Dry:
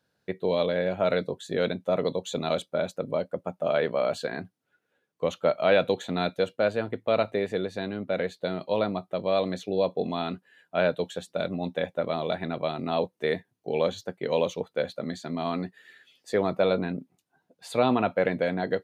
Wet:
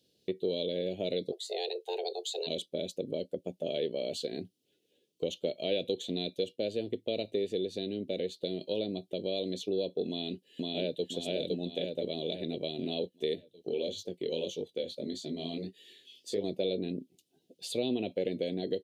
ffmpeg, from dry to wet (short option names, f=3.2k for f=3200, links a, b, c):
-filter_complex "[0:a]asplit=3[a][b][c];[a]afade=t=out:st=1.31:d=0.02[d];[b]afreqshift=260,afade=t=in:st=1.31:d=0.02,afade=t=out:st=2.46:d=0.02[e];[c]afade=t=in:st=2.46:d=0.02[f];[d][e][f]amix=inputs=3:normalize=0,asplit=2[g][h];[h]afade=t=in:st=10.08:d=0.01,afade=t=out:st=11.05:d=0.01,aecho=0:1:510|1020|1530|2040|2550|3060|3570:0.891251|0.445625|0.222813|0.111406|0.0557032|0.0278516|0.0139258[i];[g][i]amix=inputs=2:normalize=0,asettb=1/sr,asplit=3[j][k][l];[j]atrim=end=13.354[m];[k]atrim=start=13.35:end=16.44,asetpts=PTS-STARTPTS,afade=t=in:d=0.004:c=qsin,afade=t=out:st=3.086:d=0.004:c=qsin,flanger=delay=19:depth=5.8:speed=1.6[n];[l]atrim=start=16.436[o];[m][n]acrossfade=d=0.004:c1=hsin:c2=qsin[p];[p][o]acrossfade=d=0.004:c1=qsin:c2=hsin,firequalizer=gain_entry='entry(140,0);entry(370,10);entry(830,-12);entry(1300,-29);entry(1800,-9);entry(3000,15)':delay=0.05:min_phase=1,acompressor=threshold=-35dB:ratio=2,highshelf=f=3.1k:g=-8.5,volume=-1dB"